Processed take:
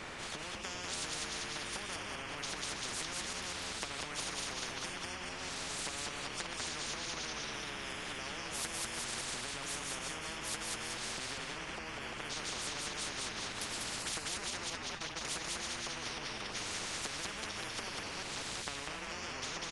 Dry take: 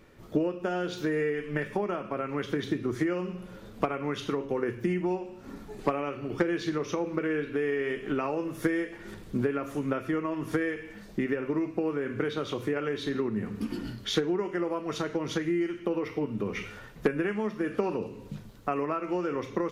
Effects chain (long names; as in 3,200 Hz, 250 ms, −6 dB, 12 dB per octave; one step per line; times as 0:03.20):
delay that plays each chunk backwards 196 ms, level −5.5 dB
camcorder AGC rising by 5.2 dB per second
0:14.75–0:15.25: noise gate −27 dBFS, range −34 dB
downward compressor, threshold −30 dBFS, peak gain reduction 10.5 dB
on a send: echo with shifted repeats 196 ms, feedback 40%, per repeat −100 Hz, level −3 dB
on the sum: downsampling to 22,050 Hz
every bin compressed towards the loudest bin 10 to 1
level −4 dB